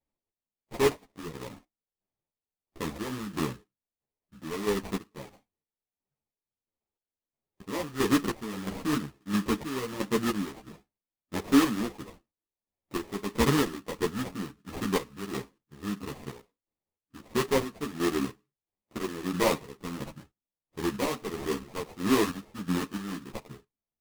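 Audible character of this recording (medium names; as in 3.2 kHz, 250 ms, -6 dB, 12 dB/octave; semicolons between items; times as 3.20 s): chopped level 1.5 Hz, depth 60%, duty 45%; aliases and images of a low sample rate 1.5 kHz, jitter 20%; a shimmering, thickened sound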